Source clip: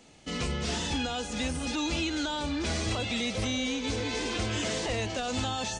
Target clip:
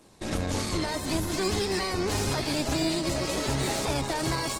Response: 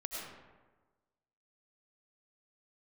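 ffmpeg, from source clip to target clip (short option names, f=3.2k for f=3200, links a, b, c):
-filter_complex "[0:a]equalizer=f=2.4k:w=3.3:g=-10,aeval=exprs='0.119*(cos(1*acos(clip(val(0)/0.119,-1,1)))-cos(1*PI/2))+0.0015*(cos(3*acos(clip(val(0)/0.119,-1,1)))-cos(3*PI/2))+0.00841*(cos(4*acos(clip(val(0)/0.119,-1,1)))-cos(4*PI/2))+0.00299*(cos(7*acos(clip(val(0)/0.119,-1,1)))-cos(7*PI/2))+0.00596*(cos(8*acos(clip(val(0)/0.119,-1,1)))-cos(8*PI/2))':c=same,asplit=3[a][b][c];[b]asetrate=22050,aresample=44100,atempo=2,volume=-7dB[d];[c]asetrate=29433,aresample=44100,atempo=1.49831,volume=-18dB[e];[a][d][e]amix=inputs=3:normalize=0,acontrast=75,asetrate=55566,aresample=44100,aecho=1:1:601:0.112,asplit=2[f][g];[1:a]atrim=start_sample=2205,asetrate=41013,aresample=44100,adelay=53[h];[g][h]afir=irnorm=-1:irlink=0,volume=-15dB[i];[f][i]amix=inputs=2:normalize=0,volume=-4dB" -ar 48000 -c:a libopus -b:a 16k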